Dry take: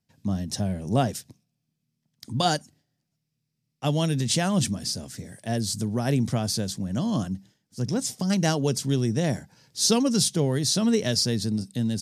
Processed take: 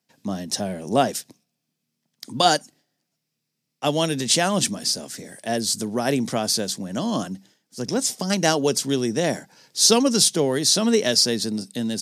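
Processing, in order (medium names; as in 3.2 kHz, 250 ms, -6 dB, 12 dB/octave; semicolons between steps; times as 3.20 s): high-pass 290 Hz 12 dB/octave; trim +6.5 dB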